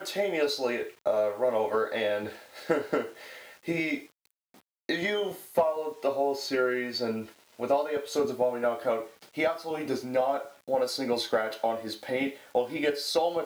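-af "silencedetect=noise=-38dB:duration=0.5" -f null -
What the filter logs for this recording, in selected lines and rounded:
silence_start: 4.02
silence_end: 4.89 | silence_duration: 0.87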